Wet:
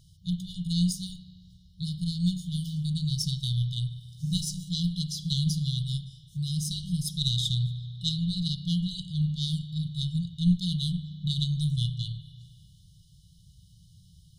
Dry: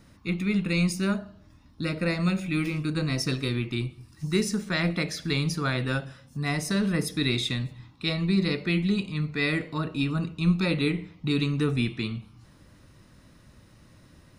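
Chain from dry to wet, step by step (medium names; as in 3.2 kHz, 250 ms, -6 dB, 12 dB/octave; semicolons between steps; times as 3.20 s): spring tank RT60 2.1 s, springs 33 ms, chirp 20 ms, DRR 9 dB; Chebyshev shaper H 2 -7 dB, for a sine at -10.5 dBFS; FFT band-reject 190–2900 Hz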